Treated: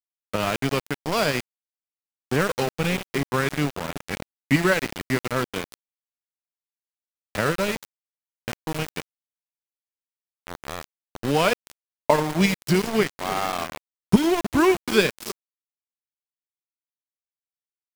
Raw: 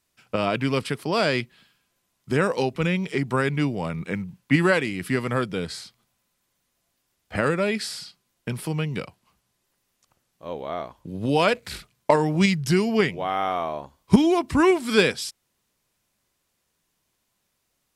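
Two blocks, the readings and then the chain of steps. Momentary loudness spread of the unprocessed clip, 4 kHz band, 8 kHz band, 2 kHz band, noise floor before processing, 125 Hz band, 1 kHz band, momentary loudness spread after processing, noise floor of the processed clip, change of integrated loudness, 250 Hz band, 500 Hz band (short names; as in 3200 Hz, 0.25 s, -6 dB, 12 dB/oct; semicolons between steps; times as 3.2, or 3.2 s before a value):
15 LU, +0.5 dB, +3.5 dB, 0.0 dB, -75 dBFS, -1.5 dB, -0.5 dB, 16 LU, under -85 dBFS, -0.5 dB, -1.5 dB, -1.0 dB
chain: split-band echo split 490 Hz, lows 0.306 s, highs 87 ms, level -13 dB; transient shaper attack 0 dB, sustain -8 dB; sample gate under -23.5 dBFS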